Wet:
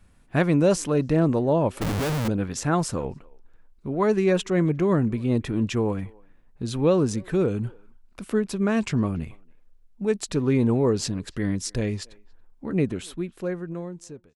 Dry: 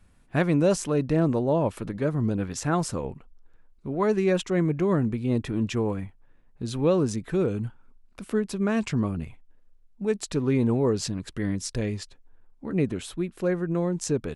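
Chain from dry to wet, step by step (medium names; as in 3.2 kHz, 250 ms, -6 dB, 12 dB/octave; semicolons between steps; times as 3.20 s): fade out at the end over 1.65 s; speakerphone echo 280 ms, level -26 dB; 1.81–2.28 s: Schmitt trigger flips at -35.5 dBFS; trim +2 dB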